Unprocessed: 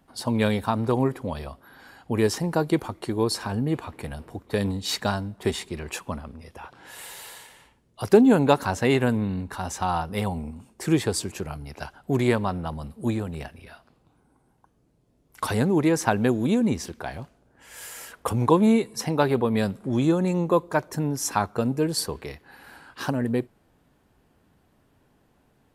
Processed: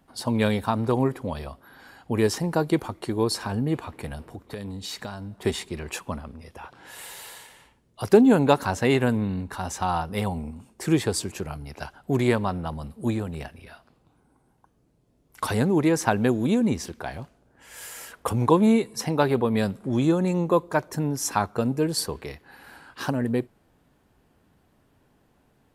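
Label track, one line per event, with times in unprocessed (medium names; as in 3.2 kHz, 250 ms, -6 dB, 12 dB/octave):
4.290000	5.370000	compression 4:1, threshold -32 dBFS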